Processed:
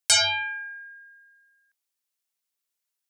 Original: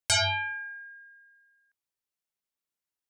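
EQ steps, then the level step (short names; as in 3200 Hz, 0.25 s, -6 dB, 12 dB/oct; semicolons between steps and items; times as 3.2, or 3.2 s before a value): HPF 310 Hz 6 dB/oct; high shelf 2500 Hz +8 dB; 0.0 dB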